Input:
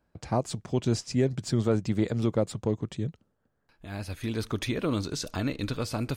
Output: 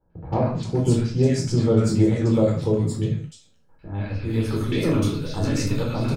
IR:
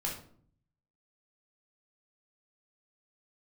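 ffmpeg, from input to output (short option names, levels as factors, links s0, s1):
-filter_complex "[0:a]acrossover=split=1200|4000[s0][s1][s2];[s1]adelay=100[s3];[s2]adelay=400[s4];[s0][s3][s4]amix=inputs=3:normalize=0[s5];[1:a]atrim=start_sample=2205,afade=t=out:st=0.26:d=0.01,atrim=end_sample=11907[s6];[s5][s6]afir=irnorm=-1:irlink=0,volume=1.41"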